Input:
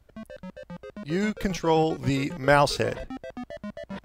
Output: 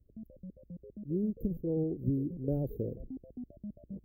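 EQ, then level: inverse Chebyshev band-stop 1000–8600 Hz, stop band 50 dB; -5.0 dB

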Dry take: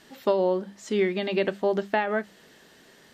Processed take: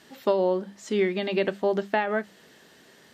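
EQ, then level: HPF 59 Hz; 0.0 dB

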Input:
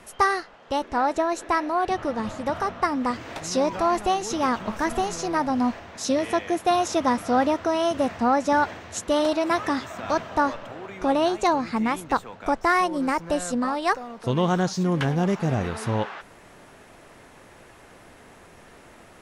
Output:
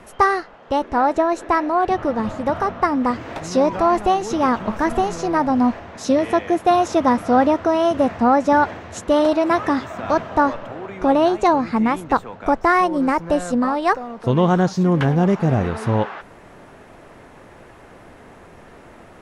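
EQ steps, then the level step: high shelf 2500 Hz -10.5 dB; +6.5 dB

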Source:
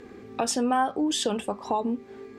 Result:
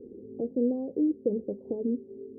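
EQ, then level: Chebyshev low-pass 510 Hz, order 5; low shelf 120 Hz -11 dB; +2.0 dB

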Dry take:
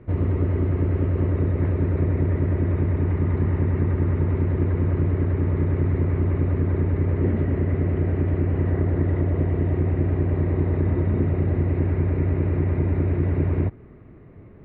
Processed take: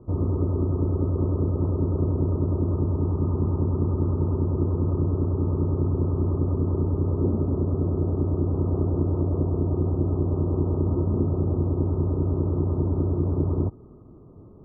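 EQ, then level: rippled Chebyshev low-pass 1300 Hz, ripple 3 dB; 0.0 dB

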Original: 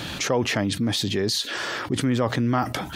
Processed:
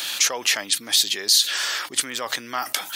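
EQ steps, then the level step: HPF 560 Hz 6 dB/oct; tilt +4.5 dB/oct; -1.0 dB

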